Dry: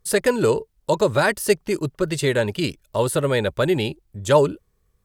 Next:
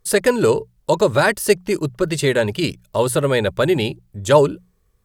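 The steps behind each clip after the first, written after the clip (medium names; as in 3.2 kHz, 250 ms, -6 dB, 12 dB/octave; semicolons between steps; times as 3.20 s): hum notches 60/120/180 Hz; trim +3 dB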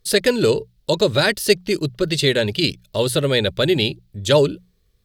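graphic EQ 1/4/8 kHz -9/+10/-4 dB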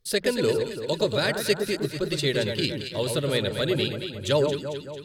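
echo whose repeats swap between lows and highs 112 ms, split 1.5 kHz, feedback 73%, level -5 dB; trim -8 dB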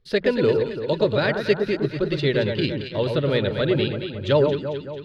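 distance through air 280 m; trim +5 dB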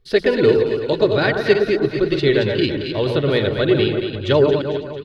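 chunks repeated in reverse 154 ms, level -8 dB; comb 2.7 ms, depth 35%; trim +3.5 dB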